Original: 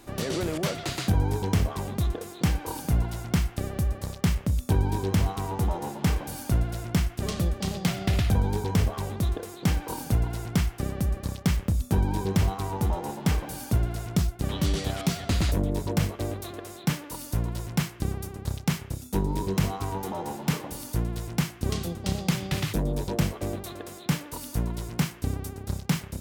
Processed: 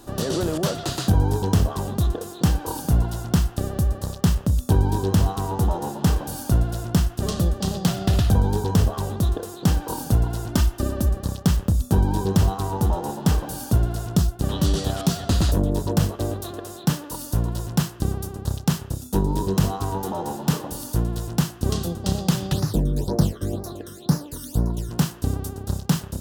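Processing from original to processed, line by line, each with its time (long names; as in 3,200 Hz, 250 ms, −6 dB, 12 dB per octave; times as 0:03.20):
0:10.48–0:11.09: comb filter 3.3 ms
0:22.53–0:24.91: all-pass phaser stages 12, 2 Hz, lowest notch 760–3,100 Hz
whole clip: parametric band 2,200 Hz −14.5 dB 0.42 octaves; level +5 dB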